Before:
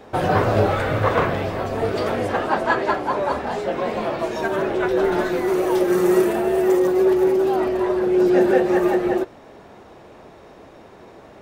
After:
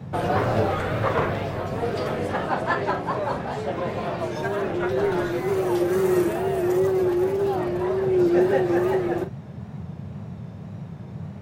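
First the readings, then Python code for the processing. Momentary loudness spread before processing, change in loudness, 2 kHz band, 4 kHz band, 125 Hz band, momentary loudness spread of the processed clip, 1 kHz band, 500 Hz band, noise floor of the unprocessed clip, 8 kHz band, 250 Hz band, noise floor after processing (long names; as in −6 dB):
7 LU, −4.0 dB, −4.5 dB, −4.0 dB, 0.0 dB, 15 LU, −4.0 dB, −4.0 dB, −45 dBFS, −4.0 dB, −3.5 dB, −38 dBFS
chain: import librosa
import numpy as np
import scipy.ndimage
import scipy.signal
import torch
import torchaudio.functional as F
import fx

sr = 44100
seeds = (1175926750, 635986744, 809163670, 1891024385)

y = fx.doubler(x, sr, ms=44.0, db=-11)
y = fx.wow_flutter(y, sr, seeds[0], rate_hz=2.1, depth_cents=78.0)
y = fx.dmg_noise_band(y, sr, seeds[1], low_hz=87.0, high_hz=200.0, level_db=-31.0)
y = F.gain(torch.from_numpy(y), -4.5).numpy()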